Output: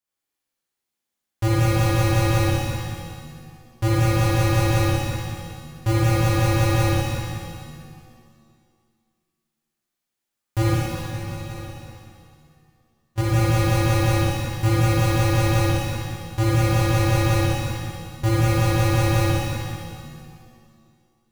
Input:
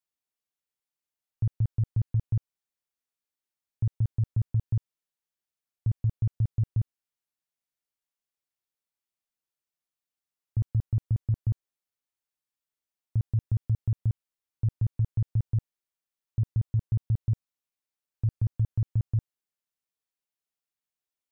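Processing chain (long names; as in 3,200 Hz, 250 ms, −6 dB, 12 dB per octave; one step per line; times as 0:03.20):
each half-wave held at its own peak
0:10.60–0:13.18: volume swells 182 ms
flutter between parallel walls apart 10.2 metres, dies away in 0.92 s
reverb with rising layers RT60 2 s, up +7 semitones, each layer −8 dB, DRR −7 dB
level −3 dB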